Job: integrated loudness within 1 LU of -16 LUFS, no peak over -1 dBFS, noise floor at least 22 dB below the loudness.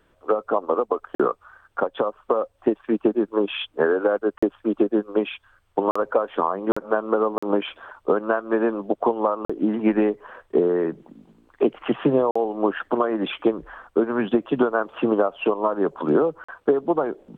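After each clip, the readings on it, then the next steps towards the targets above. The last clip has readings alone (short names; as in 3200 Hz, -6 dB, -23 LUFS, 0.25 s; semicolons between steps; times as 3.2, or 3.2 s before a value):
dropouts 8; longest dropout 45 ms; loudness -23.5 LUFS; peak -7.5 dBFS; loudness target -16.0 LUFS
-> interpolate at 1.15/4.38/5.91/6.72/7.38/9.45/12.31/16.44, 45 ms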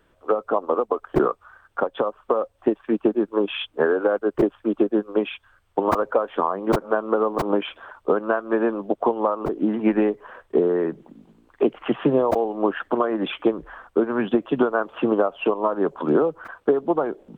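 dropouts 0; loudness -23.0 LUFS; peak -5.5 dBFS; loudness target -16.0 LUFS
-> gain +7 dB; limiter -1 dBFS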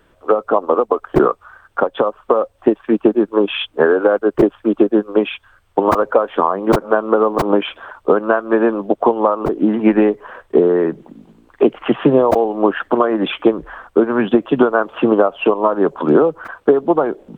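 loudness -16.0 LUFS; peak -1.0 dBFS; noise floor -56 dBFS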